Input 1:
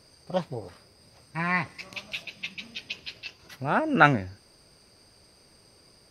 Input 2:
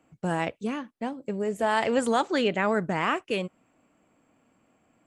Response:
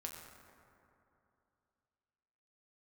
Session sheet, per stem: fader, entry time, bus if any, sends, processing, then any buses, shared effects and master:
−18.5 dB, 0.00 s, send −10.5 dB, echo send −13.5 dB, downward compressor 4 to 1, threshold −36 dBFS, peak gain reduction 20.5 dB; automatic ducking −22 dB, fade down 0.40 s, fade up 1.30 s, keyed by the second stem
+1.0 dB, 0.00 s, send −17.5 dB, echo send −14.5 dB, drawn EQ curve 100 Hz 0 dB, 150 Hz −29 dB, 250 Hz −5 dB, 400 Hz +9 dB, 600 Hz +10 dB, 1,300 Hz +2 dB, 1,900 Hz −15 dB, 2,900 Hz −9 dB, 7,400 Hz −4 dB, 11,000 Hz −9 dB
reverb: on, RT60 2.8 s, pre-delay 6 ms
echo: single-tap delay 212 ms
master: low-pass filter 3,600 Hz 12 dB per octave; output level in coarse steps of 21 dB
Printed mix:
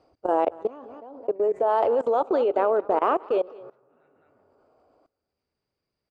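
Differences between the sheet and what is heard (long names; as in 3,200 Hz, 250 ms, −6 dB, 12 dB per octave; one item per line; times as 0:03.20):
stem 1 −18.5 dB → −8.5 dB
stem 2: send −17.5 dB → −11.5 dB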